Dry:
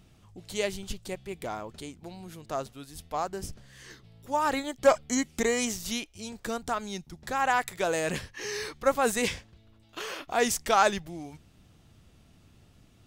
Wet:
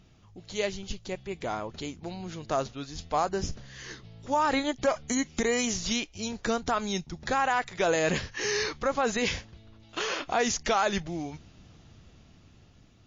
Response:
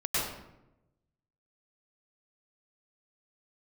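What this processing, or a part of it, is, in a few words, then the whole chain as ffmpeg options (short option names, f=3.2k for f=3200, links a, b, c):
low-bitrate web radio: -af "dynaudnorm=f=480:g=7:m=7dB,alimiter=limit=-15.5dB:level=0:latency=1:release=123" -ar 16000 -c:a libmp3lame -b:a 32k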